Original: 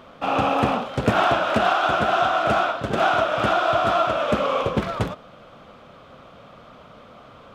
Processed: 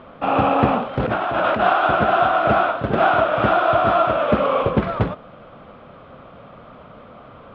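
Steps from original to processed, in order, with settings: 0.97–1.61 negative-ratio compressor -24 dBFS, ratio -1; air absorption 380 m; gain +5 dB

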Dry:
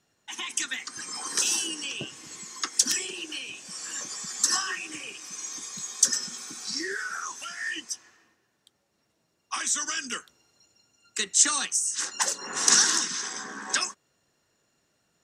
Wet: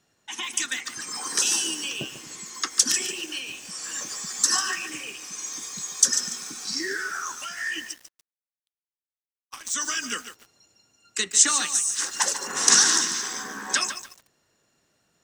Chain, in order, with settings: 7.91–9.74 power-law curve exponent 2; lo-fi delay 0.145 s, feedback 35%, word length 7-bit, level -9.5 dB; gain +2.5 dB

